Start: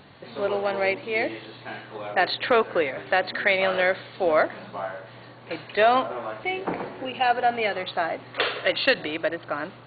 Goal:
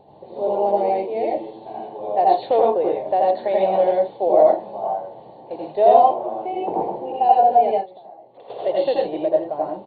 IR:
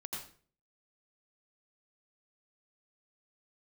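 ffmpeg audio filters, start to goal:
-filter_complex "[0:a]firequalizer=gain_entry='entry(260,0);entry(380,8);entry(830,12);entry(1300,-19);entry(3400,-9)':delay=0.05:min_phase=1,asettb=1/sr,asplit=3[s0][s1][s2];[s0]atrim=end=7.714[s3];[s1]atrim=start=7.71:end=8.5,asetpts=PTS-STARTPTS,afade=t=in:d=0.004:c=qsin,afade=t=out:st=0.786:d=0.004:c=qsin,acompressor=threshold=0.0141:ratio=12[s4];[s2]atrim=start=8.496[s5];[s3][s4]acrossfade=d=0.004:c1=hsin:c2=qsin[s6];[s6][s5]acrossfade=d=0.004:c1=qsin:c2=hsin[s7];[1:a]atrim=start_sample=2205,atrim=end_sample=6615[s8];[s7][s8]afir=irnorm=-1:irlink=0,volume=0.891"

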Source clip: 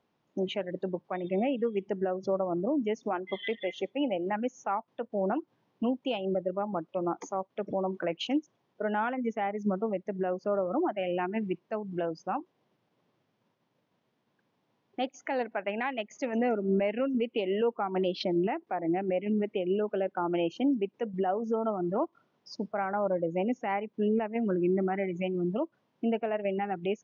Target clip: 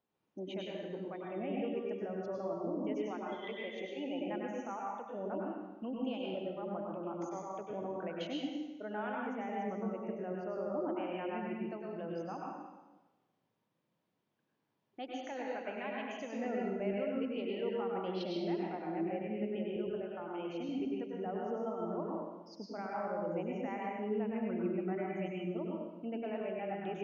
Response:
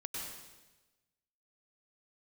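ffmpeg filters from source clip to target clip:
-filter_complex "[0:a]asettb=1/sr,asplit=3[s0][s1][s2];[s0]atrim=end=19.764[s3];[s1]atrim=start=19.76:end=20.69,asetpts=PTS-STARTPTS,afade=t=in:d=0.004:c=qsin,afade=t=out:st=0.926:d=0.004:c=qsin,acrossover=split=160|3000[s4][s5][s6];[s5]acompressor=threshold=0.0316:ratio=6[s7];[s4][s7][s6]amix=inputs=3:normalize=0[s8];[s2]atrim=start=20.686[s9];[s3][s8]acrossfade=d=0.004:c1=hsin:c2=qsin[s10];[s10][s9]acrossfade=d=0.004:c1=qsin:c2=hsin[s11];[1:a]atrim=start_sample=2205[s12];[s11][s12]afir=irnorm=-1:irlink=0,volume=0.398"

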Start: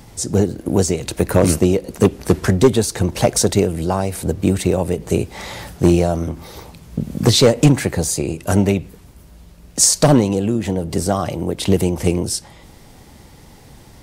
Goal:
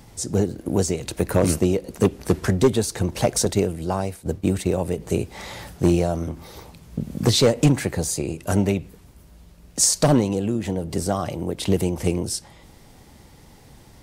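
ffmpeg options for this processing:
-filter_complex "[0:a]asettb=1/sr,asplit=3[s0][s1][s2];[s0]atrim=end=3.454[s3];[s1]atrim=start=3.45:end=4.77,asetpts=PTS-STARTPTS,afade=t=in:d=0.004:c=qsin,afade=t=out:st=1.316:d=0.004:c=qsin,agate=range=0.0224:threshold=0.126:ratio=3:detection=peak[s4];[s2]atrim=start=4.766[s5];[s3][s4]acrossfade=d=0.004:c1=hsin:c2=qsin[s6];[s6][s5]acrossfade=d=0.004:c1=qsin:c2=hsin,volume=0.562"

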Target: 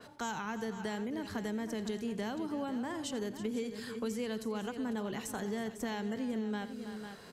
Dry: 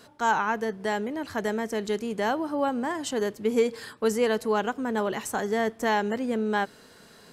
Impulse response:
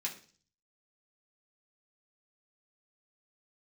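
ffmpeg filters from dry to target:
-filter_complex "[0:a]acrossover=split=260|3000[s0][s1][s2];[s1]acompressor=threshold=0.00501:ratio=2[s3];[s0][s3][s2]amix=inputs=3:normalize=0,aecho=1:1:85|321|499:0.15|0.178|0.224,acompressor=threshold=0.0224:ratio=4,adynamicequalizer=threshold=0.00126:dfrequency=3900:dqfactor=0.7:tfrequency=3900:tqfactor=0.7:attack=5:release=100:ratio=0.375:range=3:mode=cutabove:tftype=highshelf"

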